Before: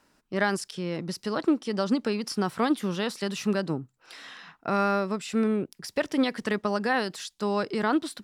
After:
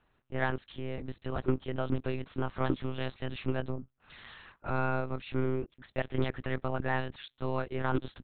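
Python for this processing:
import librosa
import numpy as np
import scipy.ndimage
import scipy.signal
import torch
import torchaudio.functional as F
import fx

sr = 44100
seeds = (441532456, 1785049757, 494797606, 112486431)

y = fx.lpc_monotone(x, sr, seeds[0], pitch_hz=130.0, order=8)
y = fx.doppler_dist(y, sr, depth_ms=0.2)
y = y * 10.0 ** (-5.0 / 20.0)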